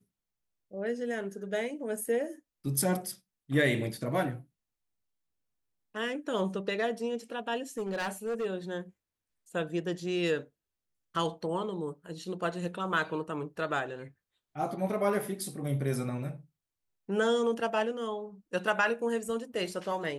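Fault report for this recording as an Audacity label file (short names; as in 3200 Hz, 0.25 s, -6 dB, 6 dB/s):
7.560000	8.460000	clipped -29 dBFS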